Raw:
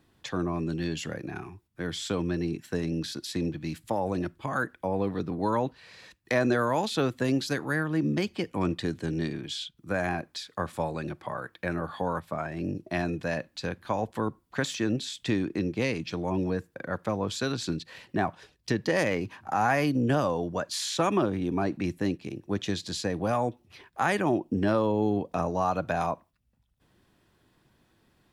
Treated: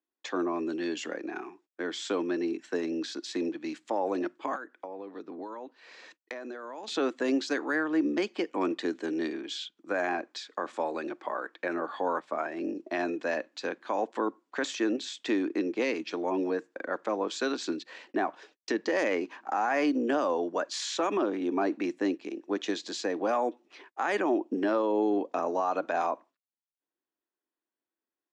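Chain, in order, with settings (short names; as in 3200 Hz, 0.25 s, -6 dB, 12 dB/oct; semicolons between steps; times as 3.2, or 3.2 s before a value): gate -55 dBFS, range -28 dB; elliptic band-pass 290–7100 Hz, stop band 40 dB; bell 5400 Hz -4.5 dB 2.3 oct; limiter -21 dBFS, peak gain reduction 7 dB; 4.55–6.88 compressor 10:1, threshold -40 dBFS, peak gain reduction 14.5 dB; gain +2.5 dB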